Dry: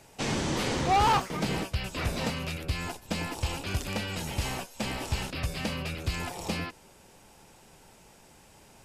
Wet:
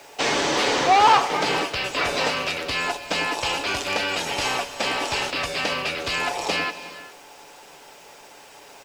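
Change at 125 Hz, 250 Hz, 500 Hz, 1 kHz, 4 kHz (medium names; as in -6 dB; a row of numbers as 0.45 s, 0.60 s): -7.5 dB, +1.0 dB, +9.5 dB, +9.0 dB, +11.0 dB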